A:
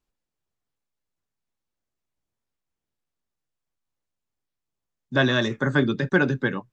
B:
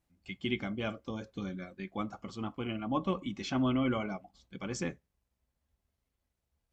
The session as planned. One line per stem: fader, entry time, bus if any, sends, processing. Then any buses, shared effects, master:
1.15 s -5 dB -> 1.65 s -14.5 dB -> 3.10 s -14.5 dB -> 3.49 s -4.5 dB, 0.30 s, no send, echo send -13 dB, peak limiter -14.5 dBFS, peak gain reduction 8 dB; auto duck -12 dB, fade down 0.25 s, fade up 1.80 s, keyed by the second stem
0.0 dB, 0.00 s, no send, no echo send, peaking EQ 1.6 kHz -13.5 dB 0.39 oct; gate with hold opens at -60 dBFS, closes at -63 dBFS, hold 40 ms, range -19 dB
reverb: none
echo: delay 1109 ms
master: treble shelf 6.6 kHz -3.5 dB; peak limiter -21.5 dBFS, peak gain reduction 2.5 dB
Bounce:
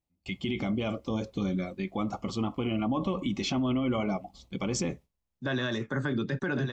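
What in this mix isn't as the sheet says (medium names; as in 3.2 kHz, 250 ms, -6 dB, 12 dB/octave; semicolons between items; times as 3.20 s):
stem A -5.0 dB -> +2.0 dB; stem B 0.0 dB -> +11.5 dB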